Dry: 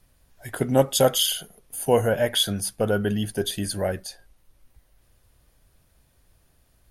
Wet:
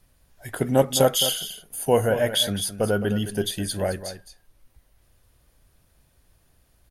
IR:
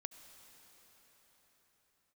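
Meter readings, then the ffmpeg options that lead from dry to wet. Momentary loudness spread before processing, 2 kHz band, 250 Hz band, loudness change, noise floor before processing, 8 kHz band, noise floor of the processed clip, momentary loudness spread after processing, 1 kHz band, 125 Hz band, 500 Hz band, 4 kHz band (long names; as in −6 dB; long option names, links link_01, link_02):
13 LU, +0.5 dB, +0.5 dB, 0.0 dB, −64 dBFS, +0.5 dB, −63 dBFS, 12 LU, +0.5 dB, +0.5 dB, +0.5 dB, +0.5 dB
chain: -af "aecho=1:1:214:0.266"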